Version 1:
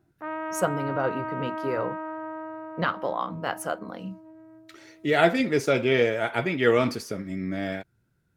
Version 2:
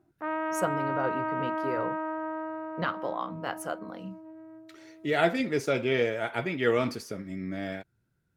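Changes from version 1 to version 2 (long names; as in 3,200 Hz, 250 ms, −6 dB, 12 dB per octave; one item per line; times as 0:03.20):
speech −4.5 dB
reverb: on, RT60 0.45 s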